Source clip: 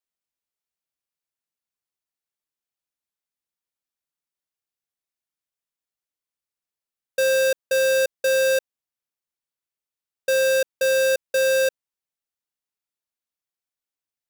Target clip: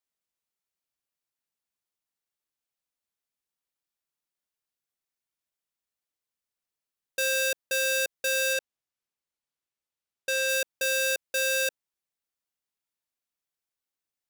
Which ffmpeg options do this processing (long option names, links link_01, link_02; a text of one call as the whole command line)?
ffmpeg -i in.wav -filter_complex "[0:a]acrossover=split=1700[link_01][link_02];[link_01]asoftclip=type=tanh:threshold=-31dB[link_03];[link_03][link_02]amix=inputs=2:normalize=0,asettb=1/sr,asplit=3[link_04][link_05][link_06];[link_04]atrim=end=8.534[link_07];[link_05]atrim=start=8.53:end=10.49,asetpts=PTS-STARTPTS,afade=type=in:duration=0.004:curve=qsin,afade=type=out:start_time=1.956:duration=0.004:curve=qsin,highshelf=frequency=11000:gain=-8[link_08];[link_06]atrim=start=10.486[link_09];[link_07][link_08]acrossfade=duration=0.004:curve1=hsin:curve2=qsin[link_10];[link_10][link_09]acrossfade=duration=0.004:curve1=qsin:curve2=hsin" out.wav